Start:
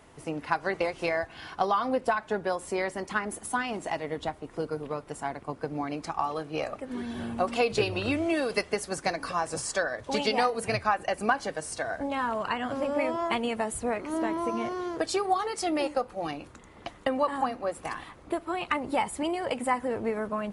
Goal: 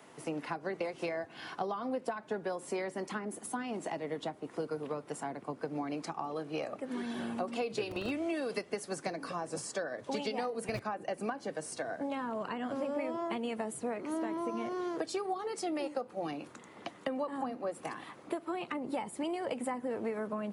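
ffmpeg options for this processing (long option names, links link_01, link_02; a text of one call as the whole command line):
ffmpeg -i in.wav -filter_complex "[0:a]acrossover=split=93|530[link_01][link_02][link_03];[link_01]acompressor=threshold=-55dB:ratio=4[link_04];[link_02]acompressor=threshold=-35dB:ratio=4[link_05];[link_03]acompressor=threshold=-41dB:ratio=4[link_06];[link_04][link_05][link_06]amix=inputs=3:normalize=0,acrossover=split=130|1200|5100[link_07][link_08][link_09][link_10];[link_07]acrusher=bits=6:mix=0:aa=0.000001[link_11];[link_11][link_08][link_09][link_10]amix=inputs=4:normalize=0" out.wav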